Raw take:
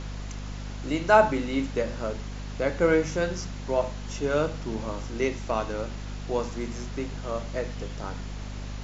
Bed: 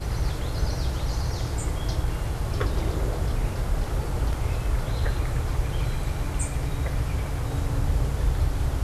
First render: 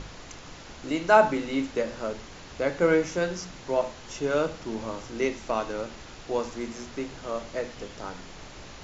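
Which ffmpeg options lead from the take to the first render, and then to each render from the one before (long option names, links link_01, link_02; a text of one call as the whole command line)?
ffmpeg -i in.wav -af "bandreject=frequency=50:width_type=h:width=6,bandreject=frequency=100:width_type=h:width=6,bandreject=frequency=150:width_type=h:width=6,bandreject=frequency=200:width_type=h:width=6,bandreject=frequency=250:width_type=h:width=6" out.wav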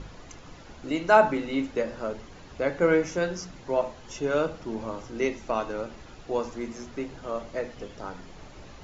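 ffmpeg -i in.wav -af "afftdn=noise_reduction=8:noise_floor=-45" out.wav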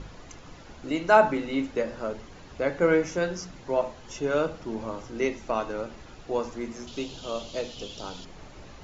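ffmpeg -i in.wav -filter_complex "[0:a]asettb=1/sr,asplit=3[link_01][link_02][link_03];[link_01]atrim=end=6.874[link_04];[link_02]atrim=start=6.87:end=8.25,asetpts=PTS-STARTPTS,afade=type=in:duration=0.004:curve=qsin,afade=type=out:start_time=1.376:duration=0.004:curve=qsin,highshelf=frequency=2500:width_type=q:width=3:gain=8.5[link_05];[link_03]atrim=start=8.246[link_06];[link_04][link_05]acrossfade=duration=0.004:curve1=hsin:curve2=qsin[link_07];[link_07][link_06]acrossfade=duration=0.004:curve1=qsin:curve2=hsin" out.wav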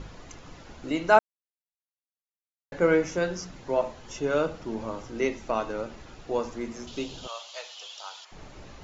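ffmpeg -i in.wav -filter_complex "[0:a]asettb=1/sr,asplit=3[link_01][link_02][link_03];[link_01]atrim=end=7.274[link_04];[link_02]atrim=start=7.27:end=8.32,asetpts=PTS-STARTPTS,afade=type=in:duration=0.004:curve=qsin,afade=type=out:start_time=1.046:duration=0.004:curve=qsin,highpass=frequency=780:width=0.5412,highpass=frequency=780:width=1.3066[link_05];[link_03]atrim=start=8.316[link_06];[link_04][link_05]acrossfade=duration=0.004:curve1=hsin:curve2=qsin[link_07];[link_07][link_06]acrossfade=duration=0.004:curve1=qsin:curve2=hsin,asplit=3[link_08][link_09][link_10];[link_08]atrim=end=1.19,asetpts=PTS-STARTPTS,afade=type=out:start_time=1.186:duration=0.004:curve=hsin[link_11];[link_09]atrim=start=1.19:end=2.72,asetpts=PTS-STARTPTS,volume=0[link_12];[link_10]atrim=start=2.72,asetpts=PTS-STARTPTS,afade=type=in:duration=0.004:curve=hsin[link_13];[link_11][link_12][link_13]concat=n=3:v=0:a=1" out.wav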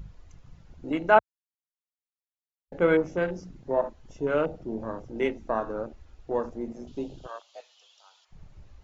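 ffmpeg -i in.wav -af "afwtdn=0.02" out.wav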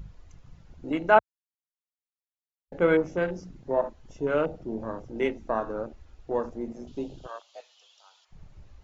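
ffmpeg -i in.wav -af anull out.wav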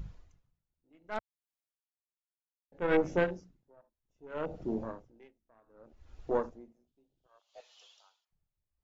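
ffmpeg -i in.wav -af "aeval=exprs='0.596*(cos(1*acos(clip(val(0)/0.596,-1,1)))-cos(1*PI/2))+0.15*(cos(2*acos(clip(val(0)/0.596,-1,1)))-cos(2*PI/2))+0.0841*(cos(6*acos(clip(val(0)/0.596,-1,1)))-cos(6*PI/2))+0.0266*(cos(8*acos(clip(val(0)/0.596,-1,1)))-cos(8*PI/2))':channel_layout=same,aeval=exprs='val(0)*pow(10,-39*(0.5-0.5*cos(2*PI*0.64*n/s))/20)':channel_layout=same" out.wav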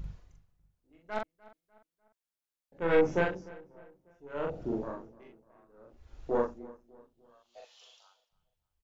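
ffmpeg -i in.wav -filter_complex "[0:a]asplit=2[link_01][link_02];[link_02]adelay=42,volume=-2dB[link_03];[link_01][link_03]amix=inputs=2:normalize=0,asplit=2[link_04][link_05];[link_05]adelay=298,lowpass=frequency=2700:poles=1,volume=-20.5dB,asplit=2[link_06][link_07];[link_07]adelay=298,lowpass=frequency=2700:poles=1,volume=0.44,asplit=2[link_08][link_09];[link_09]adelay=298,lowpass=frequency=2700:poles=1,volume=0.44[link_10];[link_04][link_06][link_08][link_10]amix=inputs=4:normalize=0" out.wav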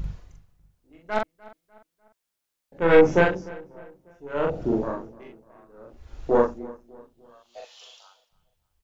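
ffmpeg -i in.wav -af "volume=9.5dB" out.wav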